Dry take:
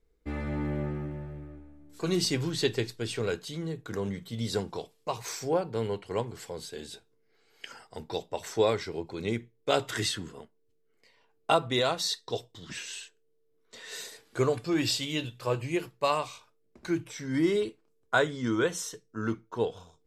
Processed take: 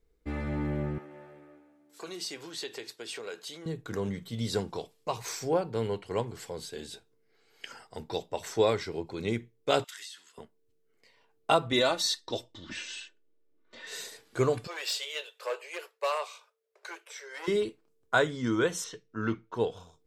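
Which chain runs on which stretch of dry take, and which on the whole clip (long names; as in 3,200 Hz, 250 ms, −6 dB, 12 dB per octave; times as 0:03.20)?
0:00.98–0:03.66: downward compressor 3 to 1, threshold −34 dBFS + high-pass filter 440 Hz
0:09.84–0:10.38: Bessel high-pass filter 2,600 Hz + downward compressor 16 to 1, threshold −40 dBFS
0:11.72–0:13.87: low-pass that shuts in the quiet parts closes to 2,900 Hz, open at −28 dBFS + comb filter 3.4 ms, depth 63%
0:14.67–0:17.48: hard clipping −23 dBFS + Chebyshev high-pass with heavy ripple 400 Hz, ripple 3 dB
0:18.84–0:19.54: low-pass filter 4,400 Hz + parametric band 2,700 Hz +5.5 dB 1.4 octaves
whole clip: no processing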